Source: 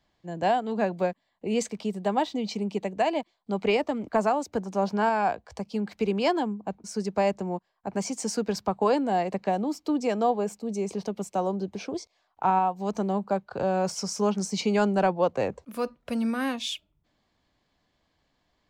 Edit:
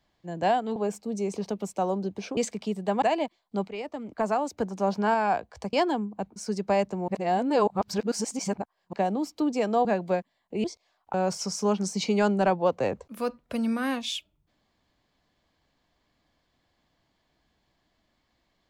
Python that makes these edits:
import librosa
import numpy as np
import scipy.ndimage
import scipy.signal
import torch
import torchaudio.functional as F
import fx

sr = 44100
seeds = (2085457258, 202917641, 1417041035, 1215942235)

y = fx.edit(x, sr, fx.swap(start_s=0.76, length_s=0.79, other_s=10.33, other_length_s=1.61),
    fx.cut(start_s=2.2, length_s=0.77),
    fx.fade_in_from(start_s=3.63, length_s=0.88, floor_db=-16.0),
    fx.cut(start_s=5.68, length_s=0.53),
    fx.reverse_span(start_s=7.56, length_s=1.85),
    fx.cut(start_s=12.44, length_s=1.27), tone=tone)